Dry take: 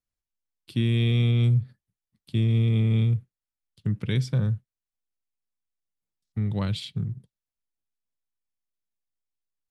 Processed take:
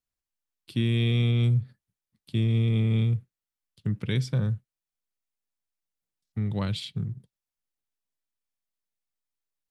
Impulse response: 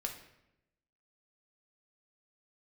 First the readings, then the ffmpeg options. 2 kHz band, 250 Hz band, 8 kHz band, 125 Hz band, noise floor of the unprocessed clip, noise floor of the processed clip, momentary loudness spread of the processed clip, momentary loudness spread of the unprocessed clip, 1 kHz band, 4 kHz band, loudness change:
0.0 dB, −1.0 dB, can't be measured, −2.0 dB, below −85 dBFS, below −85 dBFS, 12 LU, 12 LU, 0.0 dB, 0.0 dB, −1.5 dB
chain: -af "lowshelf=frequency=160:gain=-3"

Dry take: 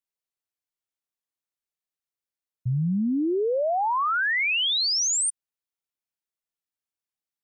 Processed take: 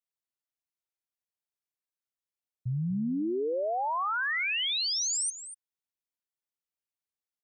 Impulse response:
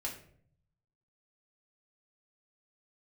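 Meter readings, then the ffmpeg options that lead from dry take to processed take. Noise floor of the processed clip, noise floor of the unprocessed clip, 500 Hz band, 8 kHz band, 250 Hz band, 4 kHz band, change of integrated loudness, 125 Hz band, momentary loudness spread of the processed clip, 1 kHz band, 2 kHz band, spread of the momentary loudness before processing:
below −85 dBFS, below −85 dBFS, −6.0 dB, −6.0 dB, −6.0 dB, −6.0 dB, −6.0 dB, −6.0 dB, 9 LU, −6.0 dB, −6.0 dB, 6 LU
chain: -af "aecho=1:1:242:0.224,volume=-6dB"

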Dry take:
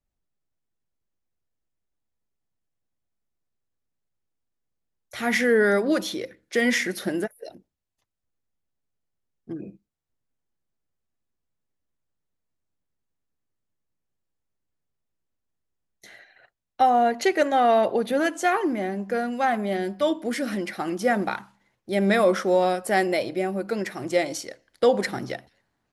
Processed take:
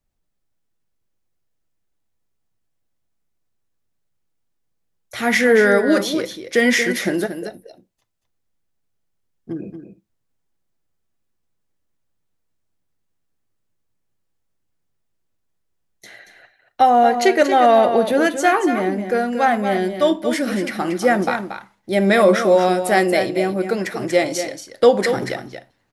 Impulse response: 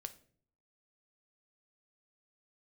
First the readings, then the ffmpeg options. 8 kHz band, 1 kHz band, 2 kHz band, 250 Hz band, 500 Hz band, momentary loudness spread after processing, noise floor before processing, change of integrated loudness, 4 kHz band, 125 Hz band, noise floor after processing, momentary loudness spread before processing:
+6.5 dB, +6.5 dB, +6.5 dB, +6.0 dB, +6.5 dB, 14 LU, −80 dBFS, +6.5 dB, +6.5 dB, +6.0 dB, −71 dBFS, 14 LU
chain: -filter_complex "[0:a]aecho=1:1:231:0.355,asplit=2[link_01][link_02];[1:a]atrim=start_sample=2205,atrim=end_sample=3528[link_03];[link_02][link_03]afir=irnorm=-1:irlink=0,volume=6dB[link_04];[link_01][link_04]amix=inputs=2:normalize=0,volume=-1dB"

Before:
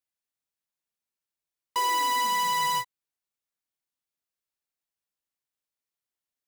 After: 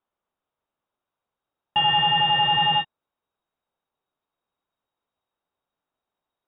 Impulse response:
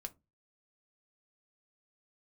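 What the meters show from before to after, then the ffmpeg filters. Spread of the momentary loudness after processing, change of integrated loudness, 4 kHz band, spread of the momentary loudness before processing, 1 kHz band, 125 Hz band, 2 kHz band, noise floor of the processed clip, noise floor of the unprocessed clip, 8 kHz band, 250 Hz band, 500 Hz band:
8 LU, +6.5 dB, +11.5 dB, 8 LU, +3.5 dB, +18.5 dB, +9.5 dB, below −85 dBFS, below −85 dBFS, below −40 dB, +9.5 dB, +2.0 dB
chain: -af "aexciter=amount=8.2:drive=3.6:freq=2700,asubboost=boost=6.5:cutoff=75,lowpass=frequency=3200:width_type=q:width=0.5098,lowpass=frequency=3200:width_type=q:width=0.6013,lowpass=frequency=3200:width_type=q:width=0.9,lowpass=frequency=3200:width_type=q:width=2.563,afreqshift=-3800,volume=3.5dB"

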